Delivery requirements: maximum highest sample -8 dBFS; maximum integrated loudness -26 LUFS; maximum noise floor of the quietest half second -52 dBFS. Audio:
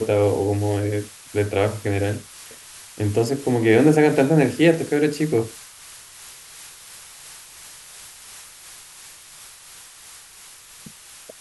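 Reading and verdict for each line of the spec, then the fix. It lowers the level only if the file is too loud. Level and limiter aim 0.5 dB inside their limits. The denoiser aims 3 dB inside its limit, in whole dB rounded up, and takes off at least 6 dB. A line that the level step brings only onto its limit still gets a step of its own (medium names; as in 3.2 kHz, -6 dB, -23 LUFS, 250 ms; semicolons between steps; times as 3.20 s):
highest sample -3.5 dBFS: fail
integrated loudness -20.0 LUFS: fail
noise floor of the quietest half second -45 dBFS: fail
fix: noise reduction 6 dB, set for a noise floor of -45 dBFS; trim -6.5 dB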